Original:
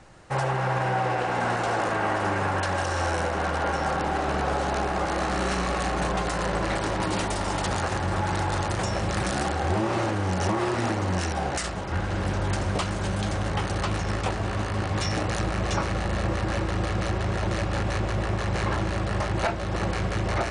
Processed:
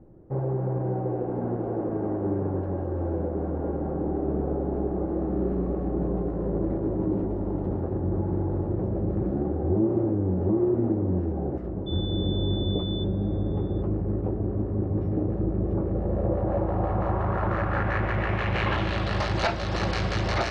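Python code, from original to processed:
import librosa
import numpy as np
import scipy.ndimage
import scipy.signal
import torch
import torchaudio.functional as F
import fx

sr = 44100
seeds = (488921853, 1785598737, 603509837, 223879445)

y = fx.filter_sweep_lowpass(x, sr, from_hz=360.0, to_hz=4700.0, start_s=15.73, end_s=19.33, q=1.9)
y = fx.dmg_tone(y, sr, hz=3500.0, level_db=-36.0, at=(11.86, 13.03), fade=0.02)
y = y + 10.0 ** (-22.5 / 20.0) * np.pad(y, (int(778 * sr / 1000.0), 0))[:len(y)]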